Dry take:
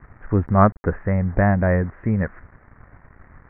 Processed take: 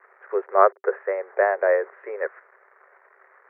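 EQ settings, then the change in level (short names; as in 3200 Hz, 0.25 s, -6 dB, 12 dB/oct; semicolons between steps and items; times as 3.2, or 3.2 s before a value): dynamic EQ 480 Hz, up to +5 dB, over -30 dBFS, Q 0.95; rippled Chebyshev high-pass 380 Hz, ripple 3 dB; 0.0 dB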